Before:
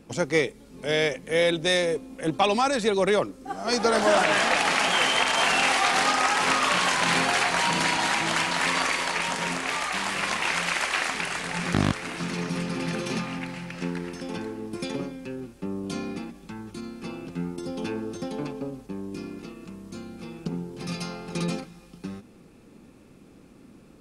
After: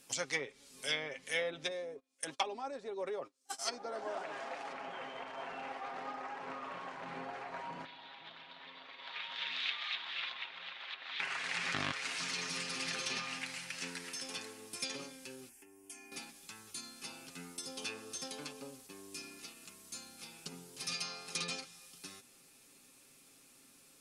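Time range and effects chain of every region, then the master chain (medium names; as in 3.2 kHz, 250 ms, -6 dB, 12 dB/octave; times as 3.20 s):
1.71–4.73 s: tone controls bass -7 dB, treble +10 dB + gate -35 dBFS, range -27 dB
7.85–11.20 s: four-pole ladder low-pass 3.9 kHz, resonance 75% + treble shelf 2.3 kHz +11 dB
15.49–16.12 s: compression 4:1, threshold -38 dBFS + static phaser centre 810 Hz, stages 8
whole clip: pre-emphasis filter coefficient 0.97; low-pass that closes with the level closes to 590 Hz, closed at -30 dBFS; comb 7.4 ms, depth 48%; trim +6 dB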